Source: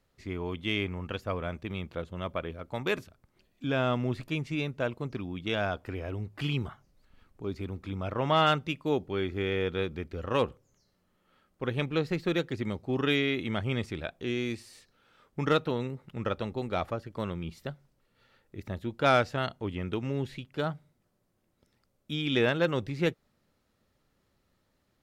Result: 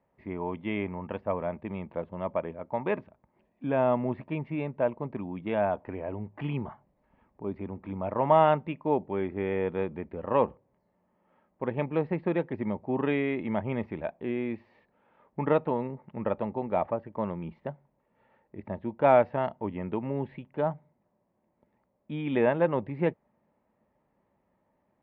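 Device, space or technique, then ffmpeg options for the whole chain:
bass cabinet: -af "highpass=61,equalizer=f=82:t=q:w=4:g=-9,equalizer=f=120:t=q:w=4:g=-4,equalizer=f=210:t=q:w=4:g=4,equalizer=f=610:t=q:w=4:g=6,equalizer=f=910:t=q:w=4:g=10,equalizer=f=1.4k:t=q:w=4:g=-9,lowpass=f=2.1k:w=0.5412,lowpass=f=2.1k:w=1.3066"

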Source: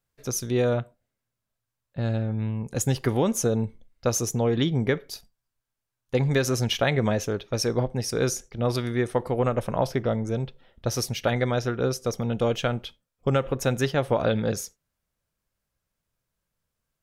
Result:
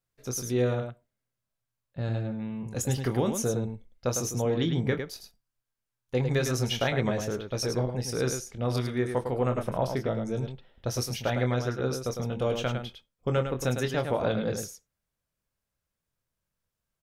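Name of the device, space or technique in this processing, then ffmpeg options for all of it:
slapback doubling: -filter_complex "[0:a]asplit=3[a][b][c];[b]adelay=24,volume=-8dB[d];[c]adelay=105,volume=-6.5dB[e];[a][d][e]amix=inputs=3:normalize=0,volume=-5dB"

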